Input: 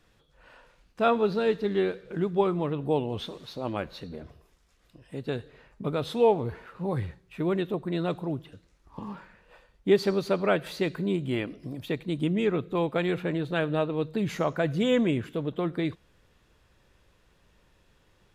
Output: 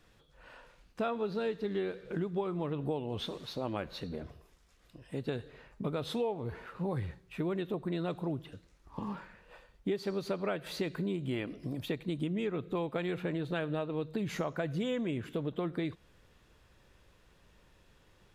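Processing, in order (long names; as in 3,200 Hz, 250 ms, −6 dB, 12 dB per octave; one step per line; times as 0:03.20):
downward compressor 6 to 1, threshold −31 dBFS, peak gain reduction 14.5 dB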